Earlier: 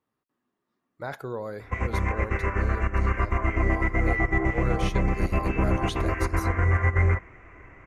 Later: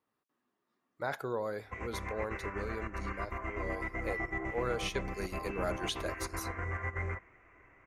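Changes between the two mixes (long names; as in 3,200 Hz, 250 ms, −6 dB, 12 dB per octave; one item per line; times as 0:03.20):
background −10.0 dB
master: add low-shelf EQ 240 Hz −8 dB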